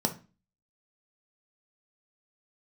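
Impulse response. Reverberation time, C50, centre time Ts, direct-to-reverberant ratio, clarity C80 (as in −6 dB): 0.30 s, 13.5 dB, 8 ms, 4.0 dB, 20.5 dB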